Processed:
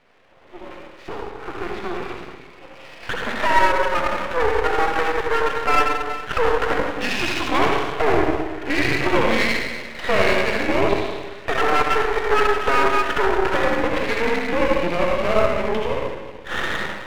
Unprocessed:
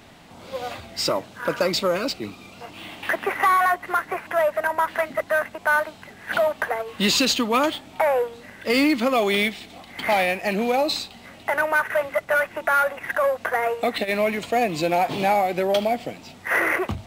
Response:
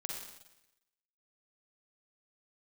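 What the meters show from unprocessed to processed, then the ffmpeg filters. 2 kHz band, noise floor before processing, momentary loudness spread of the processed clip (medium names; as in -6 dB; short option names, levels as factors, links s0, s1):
+1.0 dB, -46 dBFS, 12 LU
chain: -filter_complex "[0:a]dynaudnorm=f=940:g=7:m=3.76,highpass=f=430:t=q:w=0.5412,highpass=f=430:t=q:w=1.307,lowpass=f=3000:t=q:w=0.5176,lowpass=f=3000:t=q:w=0.7071,lowpass=f=3000:t=q:w=1.932,afreqshift=-170[s0];[1:a]atrim=start_sample=2205,asetrate=30429,aresample=44100[s1];[s0][s1]afir=irnorm=-1:irlink=0,aeval=exprs='max(val(0),0)':c=same,volume=0.708"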